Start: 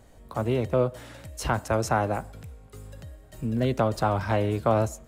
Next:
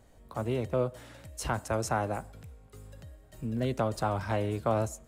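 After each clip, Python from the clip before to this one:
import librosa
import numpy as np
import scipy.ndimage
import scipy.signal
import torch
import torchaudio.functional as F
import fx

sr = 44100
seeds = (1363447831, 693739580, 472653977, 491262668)

y = fx.dynamic_eq(x, sr, hz=8800.0, q=1.1, threshold_db=-53.0, ratio=4.0, max_db=5)
y = F.gain(torch.from_numpy(y), -5.5).numpy()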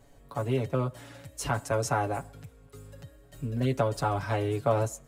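y = x + 0.83 * np.pad(x, (int(7.1 * sr / 1000.0), 0))[:len(x)]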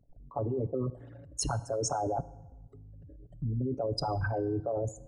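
y = fx.envelope_sharpen(x, sr, power=3.0)
y = fx.level_steps(y, sr, step_db=19)
y = fx.rev_fdn(y, sr, rt60_s=1.1, lf_ratio=0.85, hf_ratio=0.75, size_ms=19.0, drr_db=16.0)
y = F.gain(torch.from_numpy(y), 7.0).numpy()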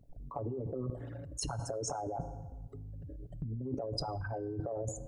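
y = fx.over_compress(x, sr, threshold_db=-35.0, ratio=-0.5)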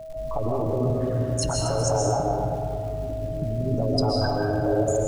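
y = x + 10.0 ** (-45.0 / 20.0) * np.sin(2.0 * np.pi * 640.0 * np.arange(len(x)) / sr)
y = fx.dmg_crackle(y, sr, seeds[0], per_s=260.0, level_db=-50.0)
y = fx.rev_freeverb(y, sr, rt60_s=2.2, hf_ratio=0.6, predelay_ms=95, drr_db=-3.0)
y = F.gain(torch.from_numpy(y), 9.0).numpy()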